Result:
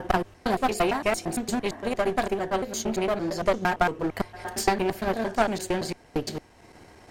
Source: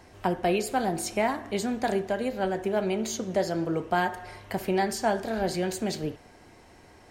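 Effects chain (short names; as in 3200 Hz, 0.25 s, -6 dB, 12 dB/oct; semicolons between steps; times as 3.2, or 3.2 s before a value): slices in reverse order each 0.114 s, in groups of 4; transient shaper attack +7 dB, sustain -4 dB; one-sided clip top -29.5 dBFS; gain +2.5 dB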